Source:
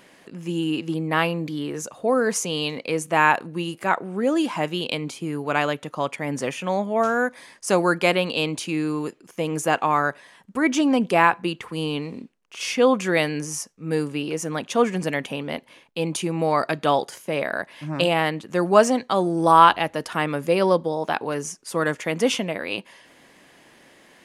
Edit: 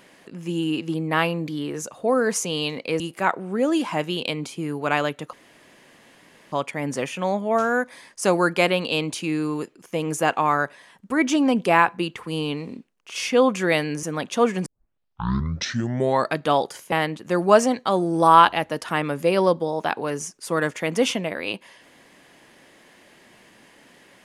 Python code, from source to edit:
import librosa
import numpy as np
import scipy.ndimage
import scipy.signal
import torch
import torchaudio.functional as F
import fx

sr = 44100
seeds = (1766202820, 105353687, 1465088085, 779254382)

y = fx.edit(x, sr, fx.cut(start_s=3.0, length_s=0.64),
    fx.insert_room_tone(at_s=5.97, length_s=1.19),
    fx.cut(start_s=13.48, length_s=0.93),
    fx.tape_start(start_s=15.04, length_s=1.68),
    fx.cut(start_s=17.3, length_s=0.86), tone=tone)